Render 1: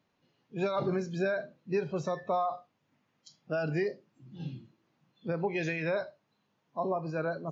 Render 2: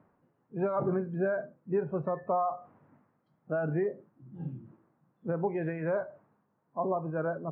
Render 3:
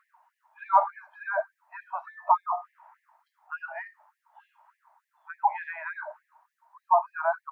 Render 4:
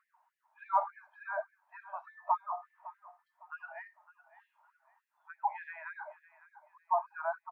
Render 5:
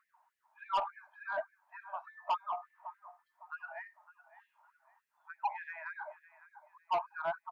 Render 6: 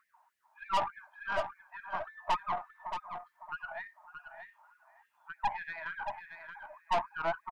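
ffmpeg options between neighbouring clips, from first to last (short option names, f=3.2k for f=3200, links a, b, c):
-af "lowpass=f=1.5k:w=0.5412,lowpass=f=1.5k:w=1.3066,areverse,acompressor=mode=upward:threshold=-47dB:ratio=2.5,areverse,volume=1dB"
-af "equalizer=f=920:w=4.3:g=15,afftfilt=real='re*gte(b*sr/1024,560*pow(1700/560,0.5+0.5*sin(2*PI*3.4*pts/sr)))':imag='im*gte(b*sr/1024,560*pow(1700/560,0.5+0.5*sin(2*PI*3.4*pts/sr)))':win_size=1024:overlap=0.75,volume=8.5dB"
-af "aecho=1:1:557|1114|1671:0.133|0.0427|0.0137,volume=-8.5dB"
-af "asoftclip=type=tanh:threshold=-26.5dB,volume=1dB"
-af "aeval=exprs='(tanh(28.2*val(0)+0.55)-tanh(0.55))/28.2':c=same,aecho=1:1:626:0.398,volume=6dB"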